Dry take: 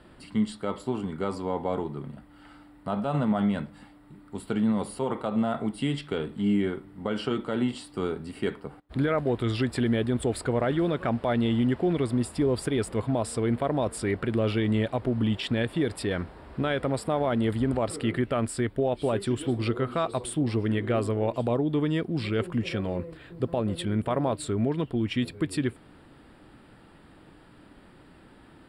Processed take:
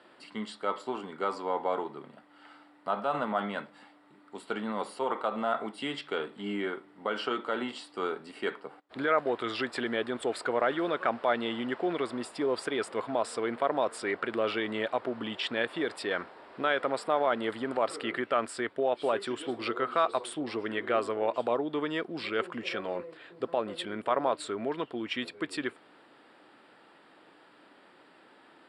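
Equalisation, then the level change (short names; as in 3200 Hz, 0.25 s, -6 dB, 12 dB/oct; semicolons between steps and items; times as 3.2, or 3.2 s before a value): dynamic EQ 1300 Hz, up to +5 dB, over -43 dBFS, Q 1.5; BPF 440–6500 Hz; 0.0 dB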